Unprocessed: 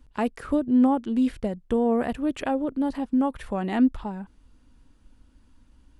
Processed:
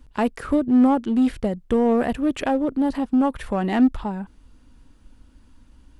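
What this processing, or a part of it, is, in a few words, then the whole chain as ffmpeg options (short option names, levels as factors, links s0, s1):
parallel distortion: -filter_complex "[0:a]asplit=2[s0][s1];[s1]asoftclip=type=hard:threshold=0.0596,volume=0.531[s2];[s0][s2]amix=inputs=2:normalize=0,volume=1.19"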